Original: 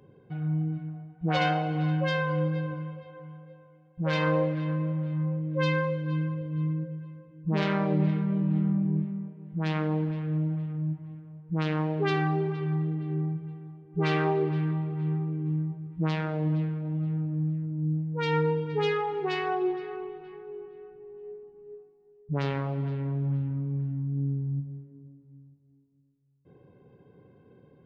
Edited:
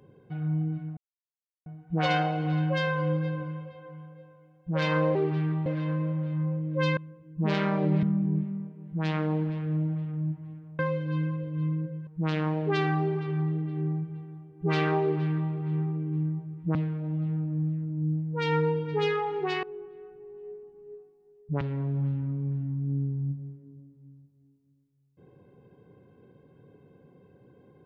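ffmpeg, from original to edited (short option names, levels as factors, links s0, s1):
-filter_complex "[0:a]asplit=11[s0][s1][s2][s3][s4][s5][s6][s7][s8][s9][s10];[s0]atrim=end=0.97,asetpts=PTS-STARTPTS,afade=t=out:st=0.966:d=0.004:c=hsin,apad=pad_dur=0.69[s11];[s1]atrim=start=0.97:end=4.462,asetpts=PTS-STARTPTS,afade=t=in:d=0.004:c=hsin[s12];[s2]atrim=start=14.338:end=14.852[s13];[s3]atrim=start=4.458:end=5.772[s14];[s4]atrim=start=7.048:end=8.112[s15];[s5]atrim=start=8.638:end=11.402[s16];[s6]atrim=start=5.768:end=7.052[s17];[s7]atrim=start=11.398:end=16.082[s18];[s8]atrim=start=16.558:end=19.442[s19];[s9]atrim=start=20.428:end=22.412[s20];[s10]atrim=start=22.888[s21];[s11][s12]concat=n=2:v=0:a=1[s22];[s22][s13]acrossfade=d=0.004:c1=hsin:c2=hsin[s23];[s23][s14]acrossfade=d=0.004:c1=hsin:c2=hsin[s24];[s24][s15]acrossfade=d=0.004:c1=hsin:c2=hsin[s25];[s25][s16]acrossfade=d=0.004:c1=hsin:c2=hsin[s26];[s26][s17]acrossfade=d=0.004:c1=hsin:c2=hsin[s27];[s27][s18]acrossfade=d=0.004:c1=hsin:c2=hsin[s28];[s28][s19]acrossfade=d=0.004:c1=hsin:c2=hsin[s29];[s29][s20]acrossfade=d=0.004:c1=hsin:c2=hsin[s30];[s30][s21]acrossfade=d=0.004:c1=hsin:c2=hsin"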